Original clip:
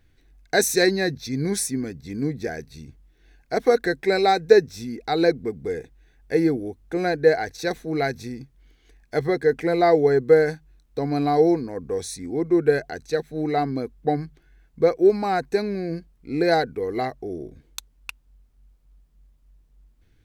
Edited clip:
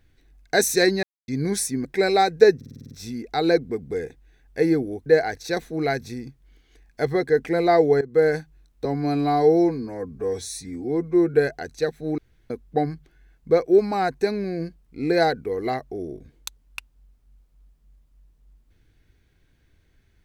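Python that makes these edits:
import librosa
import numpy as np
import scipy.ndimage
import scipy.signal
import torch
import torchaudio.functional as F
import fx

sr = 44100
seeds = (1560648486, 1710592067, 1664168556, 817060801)

y = fx.edit(x, sr, fx.silence(start_s=1.03, length_s=0.25),
    fx.cut(start_s=1.85, length_s=2.09),
    fx.stutter(start_s=4.65, slice_s=0.05, count=8),
    fx.cut(start_s=6.8, length_s=0.4),
    fx.fade_in_from(start_s=10.15, length_s=0.29, floor_db=-18.0),
    fx.stretch_span(start_s=10.99, length_s=1.66, factor=1.5),
    fx.room_tone_fill(start_s=13.49, length_s=0.32), tone=tone)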